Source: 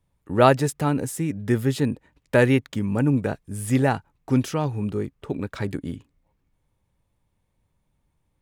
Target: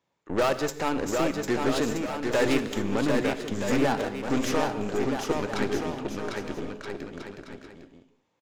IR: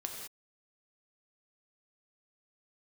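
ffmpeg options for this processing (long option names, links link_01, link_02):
-filter_complex "[0:a]highpass=320,acompressor=threshold=-30dB:ratio=1.5,aresample=16000,asoftclip=type=hard:threshold=-22.5dB,aresample=44100,aeval=exprs='0.106*(cos(1*acos(clip(val(0)/0.106,-1,1)))-cos(1*PI/2))+0.0119*(cos(8*acos(clip(val(0)/0.106,-1,1)))-cos(8*PI/2))':channel_layout=same,aecho=1:1:750|1275|1642|1900|2080:0.631|0.398|0.251|0.158|0.1,asplit=2[link_01][link_02];[1:a]atrim=start_sample=2205[link_03];[link_02][link_03]afir=irnorm=-1:irlink=0,volume=-5dB[link_04];[link_01][link_04]amix=inputs=2:normalize=0"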